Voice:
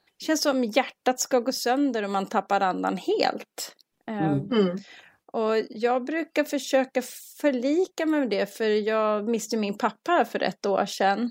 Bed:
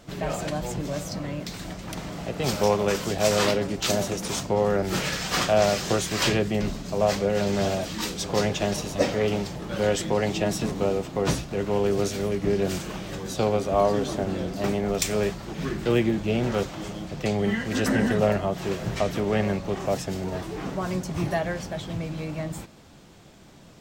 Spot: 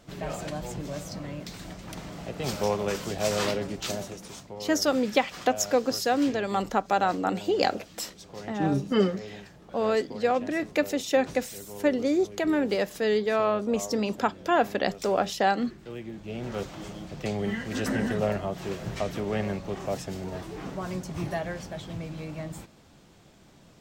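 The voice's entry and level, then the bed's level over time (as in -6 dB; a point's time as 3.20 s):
4.40 s, -1.0 dB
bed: 3.72 s -5 dB
4.57 s -17.5 dB
15.98 s -17.5 dB
16.71 s -5 dB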